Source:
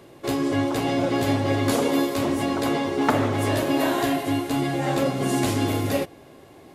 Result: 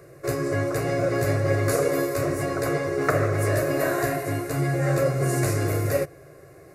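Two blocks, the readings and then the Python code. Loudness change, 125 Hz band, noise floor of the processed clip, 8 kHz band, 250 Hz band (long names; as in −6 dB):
−1.0 dB, +3.5 dB, −48 dBFS, +1.0 dB, −6.0 dB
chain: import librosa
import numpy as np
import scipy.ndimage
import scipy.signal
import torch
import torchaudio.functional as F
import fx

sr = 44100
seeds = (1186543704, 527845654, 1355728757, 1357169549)

y = fx.peak_eq(x, sr, hz=140.0, db=8.5, octaves=0.52)
y = fx.fixed_phaser(y, sr, hz=880.0, stages=6)
y = y * 10.0 ** (2.5 / 20.0)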